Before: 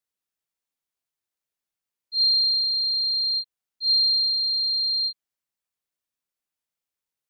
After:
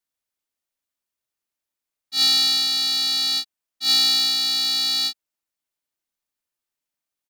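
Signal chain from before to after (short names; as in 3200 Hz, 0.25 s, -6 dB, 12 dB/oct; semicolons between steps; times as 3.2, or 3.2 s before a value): comb 3.3 ms; polarity switched at an audio rate 260 Hz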